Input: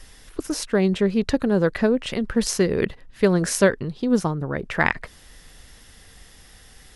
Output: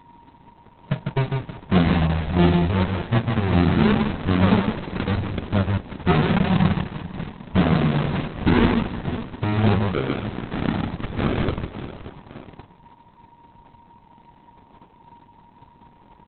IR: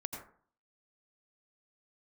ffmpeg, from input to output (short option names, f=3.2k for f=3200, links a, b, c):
-filter_complex "[0:a]afftfilt=real='re*between(b*sr/4096,190,2900)':imag='im*between(b*sr/4096,190,2900)':win_size=4096:overlap=0.75,acrossover=split=330[a][b];[a]acompressor=threshold=-31dB:ratio=8[c];[c][b]amix=inputs=2:normalize=0,acrusher=samples=28:mix=1:aa=0.000001:lfo=1:lforange=16.8:lforate=2,volume=16.5dB,asoftclip=hard,volume=-16.5dB,flanger=delay=8.7:depth=1.4:regen=-53:speed=0.31:shape=triangular,asplit=2[d][e];[e]aecho=0:1:64|144|155|246|334|472:0.631|0.168|0.119|0.266|0.106|0.15[f];[d][f]amix=inputs=2:normalize=0,asetrate=18846,aresample=44100,aeval=exprs='val(0)+0.00178*sin(2*PI*940*n/s)':c=same,volume=9dB" -ar 48000 -c:a libopus -b:a 6k